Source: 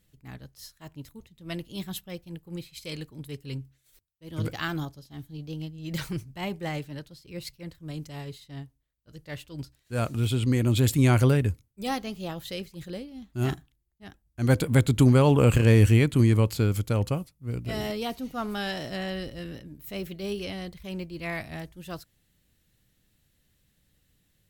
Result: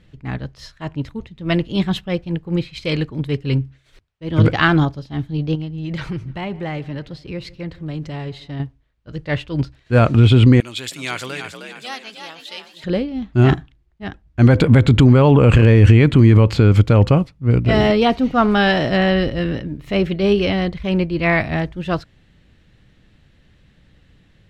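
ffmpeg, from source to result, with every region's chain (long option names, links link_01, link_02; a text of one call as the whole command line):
ffmpeg -i in.wav -filter_complex "[0:a]asettb=1/sr,asplit=3[link_01][link_02][link_03];[link_01]atrim=end=5.554[link_04];[link_02]atrim=start=5.55:end=8.6,asetpts=PTS-STARTPTS,afade=type=in:duration=0.004:curve=qsin,afade=type=out:start_time=3.046:duration=0.004:curve=qsin,acompressor=threshold=-42dB:ratio=3:attack=3.2:release=140:knee=1:detection=peak,asplit=2[link_05][link_06];[link_06]adelay=152,lowpass=frequency=3400:poles=1,volume=-21dB,asplit=2[link_07][link_08];[link_08]adelay=152,lowpass=frequency=3400:poles=1,volume=0.55,asplit=2[link_09][link_10];[link_10]adelay=152,lowpass=frequency=3400:poles=1,volume=0.55,asplit=2[link_11][link_12];[link_12]adelay=152,lowpass=frequency=3400:poles=1,volume=0.55[link_13];[link_05][link_07][link_09][link_11][link_13]amix=inputs=5:normalize=0,atrim=end_sample=134505[link_14];[link_03]atrim=start=8.596[link_15];[link_04][link_14]acrossfade=duration=0.004:curve1=hsin:curve2=qsin[link_16];[link_16][link_15]acrossfade=duration=0.004:curve1=qsin:curve2=hsin,asettb=1/sr,asplit=3[link_17][link_18][link_19];[link_17]atrim=end=10.604[link_20];[link_18]atrim=start=10.6:end=12.84,asetpts=PTS-STARTPTS,afade=type=in:duration=0.004:curve=qsin,afade=type=out:start_time=2.236:duration=0.004:curve=qsin,aderivative,asplit=6[link_21][link_22][link_23][link_24][link_25][link_26];[link_22]adelay=312,afreqshift=48,volume=-6.5dB[link_27];[link_23]adelay=624,afreqshift=96,volume=-13.4dB[link_28];[link_24]adelay=936,afreqshift=144,volume=-20.4dB[link_29];[link_25]adelay=1248,afreqshift=192,volume=-27.3dB[link_30];[link_26]adelay=1560,afreqshift=240,volume=-34.2dB[link_31];[link_21][link_27][link_28][link_29][link_30][link_31]amix=inputs=6:normalize=0,atrim=end_sample=98784[link_32];[link_19]atrim=start=12.836[link_33];[link_20][link_32]acrossfade=duration=0.004:curve1=hsin:curve2=qsin[link_34];[link_34][link_33]acrossfade=duration=0.004:curve1=qsin:curve2=hsin,lowpass=2900,alimiter=level_in=18dB:limit=-1dB:release=50:level=0:latency=1,volume=-1dB" out.wav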